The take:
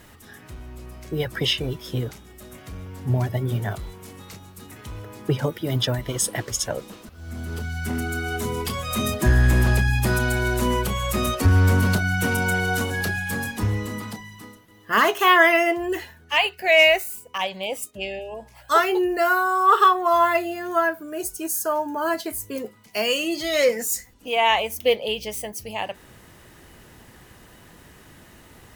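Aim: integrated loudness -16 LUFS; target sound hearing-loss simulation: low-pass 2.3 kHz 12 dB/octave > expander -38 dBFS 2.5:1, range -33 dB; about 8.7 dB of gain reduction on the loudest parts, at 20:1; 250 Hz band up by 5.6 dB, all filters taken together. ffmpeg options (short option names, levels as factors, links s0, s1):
-af "equalizer=f=250:t=o:g=7.5,acompressor=threshold=0.112:ratio=20,lowpass=2300,agate=range=0.0224:threshold=0.0126:ratio=2.5,volume=3.35"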